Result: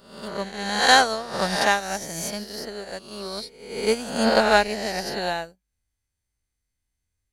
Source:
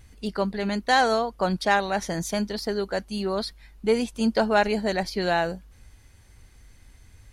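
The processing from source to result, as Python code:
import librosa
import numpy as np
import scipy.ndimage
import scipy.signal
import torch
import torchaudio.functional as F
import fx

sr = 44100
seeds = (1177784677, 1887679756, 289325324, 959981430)

y = fx.spec_swells(x, sr, rise_s=1.78)
y = fx.high_shelf(y, sr, hz=4500.0, db=10.0)
y = fx.upward_expand(y, sr, threshold_db=-38.0, expansion=2.5)
y = y * 10.0 ** (2.5 / 20.0)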